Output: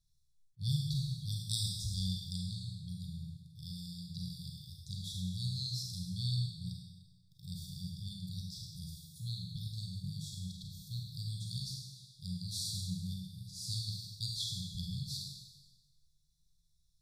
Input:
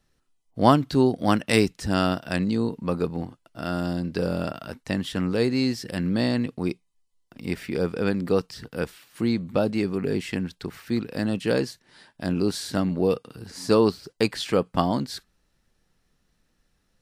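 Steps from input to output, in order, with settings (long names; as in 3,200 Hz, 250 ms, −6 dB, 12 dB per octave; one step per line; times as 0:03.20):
linear-phase brick-wall band-stop 170–3,300 Hz
four-comb reverb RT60 1.2 s, combs from 33 ms, DRR −1 dB
level that may rise only so fast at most 580 dB per second
level −7.5 dB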